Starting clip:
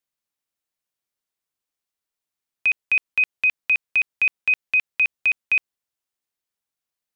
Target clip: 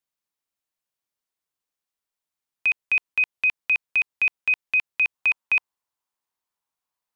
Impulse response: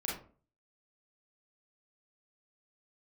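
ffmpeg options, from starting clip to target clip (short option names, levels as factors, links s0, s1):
-af "asetnsamples=n=441:p=0,asendcmd='5.15 equalizer g 12',equalizer=f=970:w=2:g=3,volume=0.794"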